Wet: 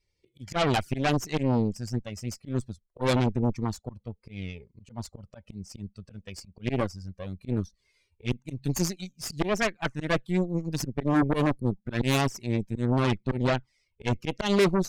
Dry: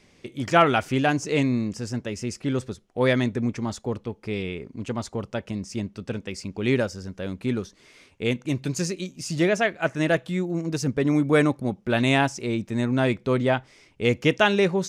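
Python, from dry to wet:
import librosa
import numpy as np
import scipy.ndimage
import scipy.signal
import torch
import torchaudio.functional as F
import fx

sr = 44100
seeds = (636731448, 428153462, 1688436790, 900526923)

y = fx.bin_expand(x, sr, power=1.5)
y = fx.env_flanger(y, sr, rest_ms=2.2, full_db=-18.5)
y = fx.auto_swell(y, sr, attack_ms=140.0)
y = fx.low_shelf(y, sr, hz=140.0, db=7.5, at=(7.48, 8.44))
y = fx.cheby_harmonics(y, sr, harmonics=(5, 8), levels_db=(-23, -12), full_scale_db=-13.5)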